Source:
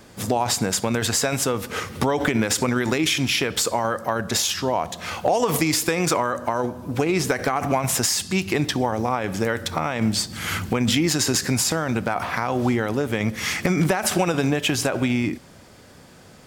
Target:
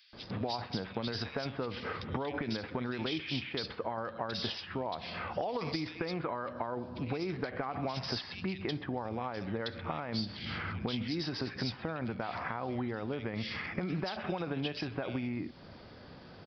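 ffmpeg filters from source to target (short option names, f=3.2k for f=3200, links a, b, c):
-filter_complex "[0:a]aresample=11025,aresample=44100,acompressor=threshold=-31dB:ratio=4,acrossover=split=2400[a][b];[a]adelay=130[c];[c][b]amix=inputs=2:normalize=0,volume=-3dB"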